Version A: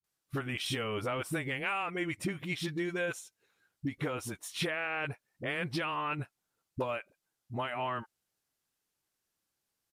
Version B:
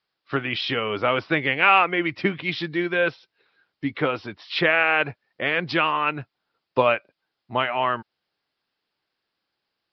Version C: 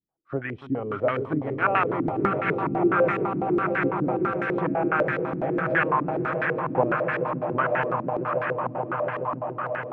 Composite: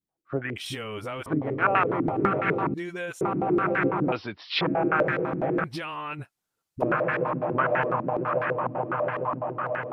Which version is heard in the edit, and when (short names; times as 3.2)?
C
0.56–1.26 from A
2.74–3.21 from A
4.12–4.61 from B
5.64–6.82 from A